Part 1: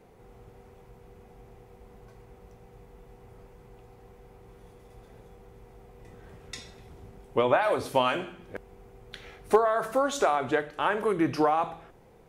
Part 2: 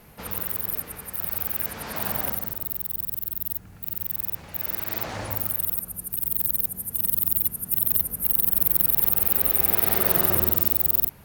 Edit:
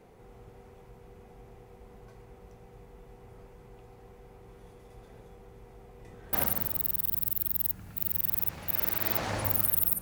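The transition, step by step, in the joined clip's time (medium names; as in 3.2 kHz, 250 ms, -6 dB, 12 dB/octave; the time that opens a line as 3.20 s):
part 1
6.33 s: go over to part 2 from 2.19 s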